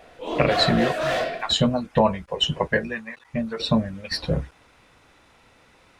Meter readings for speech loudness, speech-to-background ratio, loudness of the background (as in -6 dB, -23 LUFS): -24.0 LUFS, 2.0 dB, -26.0 LUFS